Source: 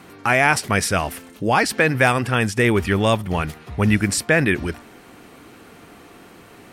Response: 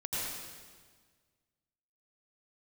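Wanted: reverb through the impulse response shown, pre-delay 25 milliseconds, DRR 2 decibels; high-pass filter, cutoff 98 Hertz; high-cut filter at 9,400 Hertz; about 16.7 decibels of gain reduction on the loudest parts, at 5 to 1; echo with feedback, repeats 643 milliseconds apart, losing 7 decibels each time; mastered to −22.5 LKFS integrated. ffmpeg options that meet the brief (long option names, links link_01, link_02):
-filter_complex "[0:a]highpass=98,lowpass=9400,acompressor=threshold=-32dB:ratio=5,aecho=1:1:643|1286|1929|2572|3215:0.447|0.201|0.0905|0.0407|0.0183,asplit=2[link_01][link_02];[1:a]atrim=start_sample=2205,adelay=25[link_03];[link_02][link_03]afir=irnorm=-1:irlink=0,volume=-6.5dB[link_04];[link_01][link_04]amix=inputs=2:normalize=0,volume=10dB"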